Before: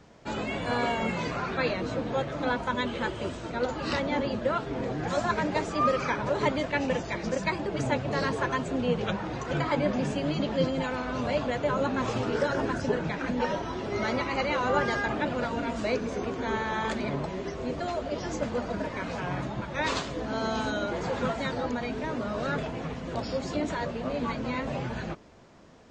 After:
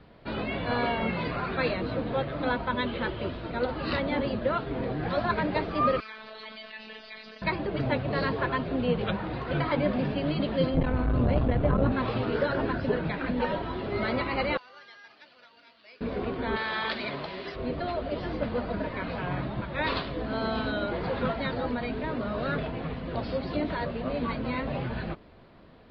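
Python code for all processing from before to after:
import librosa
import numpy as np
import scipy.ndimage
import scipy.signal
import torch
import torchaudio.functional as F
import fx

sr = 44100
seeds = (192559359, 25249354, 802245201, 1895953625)

y = fx.chain(x, sr, fx.pre_emphasis(coefficient=0.97),
    fx.robotise(hz=218.0),
    fx.env_flatten(amount_pct=70), at=(6.0, 7.42))
y = fx.chain(y, sr, fx.riaa(side='playback'),
    fx.transformer_sat(knee_hz=290.0), at=(10.74, 11.92))
y = fx.chain(y, sr, fx.bandpass_q(hz=6900.0, q=2.3),
    fx.resample_bad(factor=6, down='filtered', up='zero_stuff'), at=(14.57, 16.01))
y = fx.chain(y, sr, fx.tilt_eq(slope=3.5),
    fx.resample_bad(factor=4, down='none', up='zero_stuff'), at=(16.56, 17.56))
y = scipy.signal.sosfilt(scipy.signal.butter(12, 4600.0, 'lowpass', fs=sr, output='sos'), y)
y = fx.low_shelf(y, sr, hz=66.0, db=7.0)
y = fx.notch(y, sr, hz=860.0, q=21.0)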